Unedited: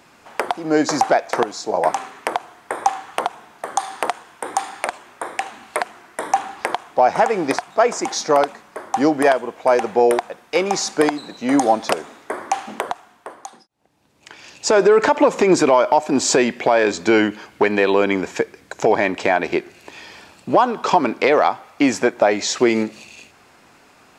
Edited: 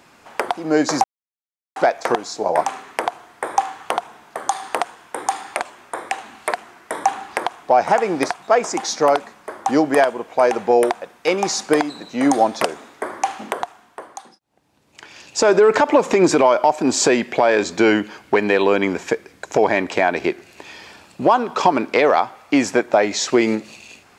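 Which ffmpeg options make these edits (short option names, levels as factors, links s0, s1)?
-filter_complex "[0:a]asplit=2[s0][s1];[s0]atrim=end=1.04,asetpts=PTS-STARTPTS,afade=t=out:st=1.036:d=0.004:c=hsin,apad=pad_dur=0.72[s2];[s1]atrim=start=1.04,asetpts=PTS-STARTPTS,afade=t=in:d=0.004:c=hsin[s3];[s2][s3]concat=n=2:v=0:a=1"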